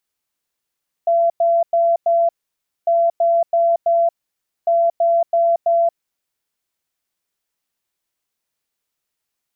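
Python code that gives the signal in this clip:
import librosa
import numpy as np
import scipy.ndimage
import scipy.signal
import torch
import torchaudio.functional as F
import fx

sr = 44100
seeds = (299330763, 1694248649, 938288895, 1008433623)

y = fx.beep_pattern(sr, wave='sine', hz=677.0, on_s=0.23, off_s=0.1, beeps=4, pause_s=0.58, groups=3, level_db=-12.0)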